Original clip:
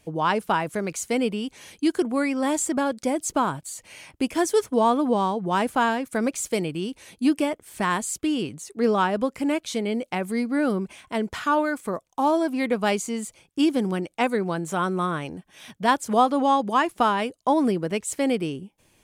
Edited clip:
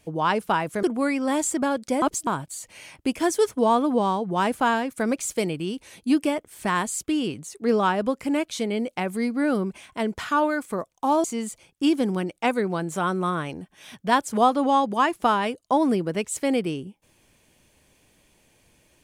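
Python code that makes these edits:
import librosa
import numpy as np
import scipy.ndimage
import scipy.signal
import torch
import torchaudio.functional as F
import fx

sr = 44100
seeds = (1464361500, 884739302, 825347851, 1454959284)

y = fx.edit(x, sr, fx.cut(start_s=0.83, length_s=1.15),
    fx.reverse_span(start_s=3.17, length_s=0.25),
    fx.cut(start_s=12.39, length_s=0.61), tone=tone)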